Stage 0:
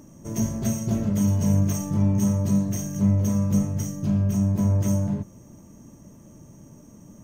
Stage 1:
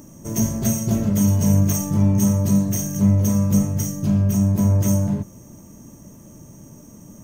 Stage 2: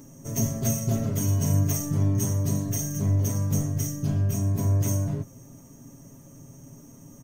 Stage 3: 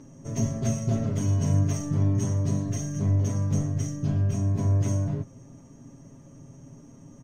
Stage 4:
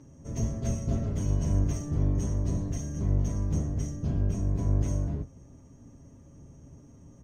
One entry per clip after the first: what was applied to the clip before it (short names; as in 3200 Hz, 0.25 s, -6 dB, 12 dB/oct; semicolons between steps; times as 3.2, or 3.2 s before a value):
high shelf 7900 Hz +9.5 dB; gain +4 dB
comb 7.4 ms, depth 74%; gain -6 dB
air absorption 100 m
octaver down 1 oct, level +1 dB; gain -6 dB